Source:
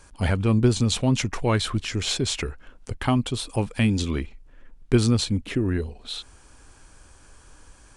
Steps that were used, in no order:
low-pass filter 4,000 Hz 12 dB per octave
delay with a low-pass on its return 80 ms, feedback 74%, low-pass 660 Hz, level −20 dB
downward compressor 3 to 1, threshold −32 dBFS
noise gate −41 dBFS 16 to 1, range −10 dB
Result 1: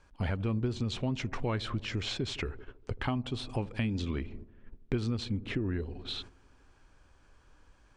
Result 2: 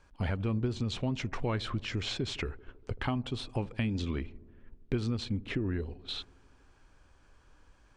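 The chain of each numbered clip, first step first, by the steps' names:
delay with a low-pass on its return, then noise gate, then downward compressor, then low-pass filter
downward compressor, then low-pass filter, then noise gate, then delay with a low-pass on its return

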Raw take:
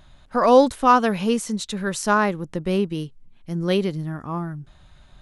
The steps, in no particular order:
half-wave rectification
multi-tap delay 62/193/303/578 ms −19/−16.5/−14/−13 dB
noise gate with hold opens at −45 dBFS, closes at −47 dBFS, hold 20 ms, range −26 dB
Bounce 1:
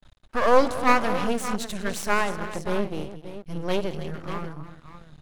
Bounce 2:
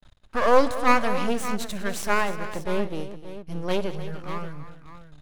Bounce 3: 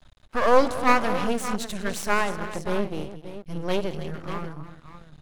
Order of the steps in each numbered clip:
multi-tap delay, then half-wave rectification, then noise gate with hold
half-wave rectification, then noise gate with hold, then multi-tap delay
noise gate with hold, then multi-tap delay, then half-wave rectification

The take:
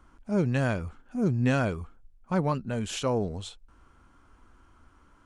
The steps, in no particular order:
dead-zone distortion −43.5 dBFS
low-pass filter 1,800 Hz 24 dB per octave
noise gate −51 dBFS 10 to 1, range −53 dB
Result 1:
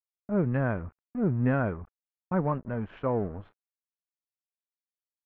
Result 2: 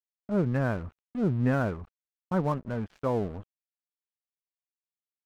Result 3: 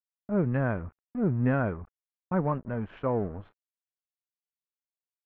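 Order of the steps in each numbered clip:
dead-zone distortion, then noise gate, then low-pass filter
low-pass filter, then dead-zone distortion, then noise gate
dead-zone distortion, then low-pass filter, then noise gate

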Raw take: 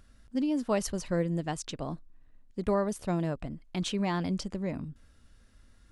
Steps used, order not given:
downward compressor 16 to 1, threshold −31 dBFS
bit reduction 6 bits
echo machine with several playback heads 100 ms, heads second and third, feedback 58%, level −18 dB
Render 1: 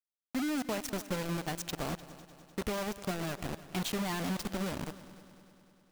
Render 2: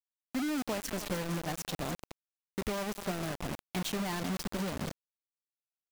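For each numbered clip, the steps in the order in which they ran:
downward compressor, then bit reduction, then echo machine with several playback heads
echo machine with several playback heads, then downward compressor, then bit reduction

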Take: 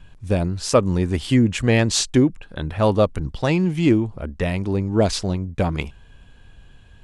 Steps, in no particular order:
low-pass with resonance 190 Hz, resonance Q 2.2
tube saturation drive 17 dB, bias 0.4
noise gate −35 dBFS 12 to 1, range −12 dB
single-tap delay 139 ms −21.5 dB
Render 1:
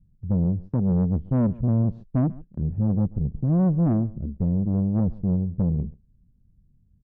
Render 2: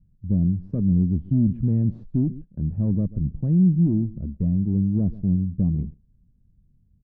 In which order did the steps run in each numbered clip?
low-pass with resonance, then tube saturation, then single-tap delay, then noise gate
single-tap delay, then tube saturation, then noise gate, then low-pass with resonance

